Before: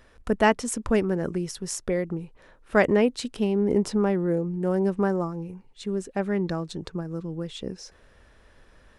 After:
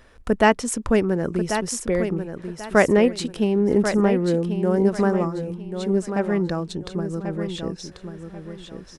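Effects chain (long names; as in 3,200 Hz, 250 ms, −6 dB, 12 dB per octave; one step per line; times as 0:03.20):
repeating echo 1,089 ms, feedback 27%, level −8.5 dB
level +3.5 dB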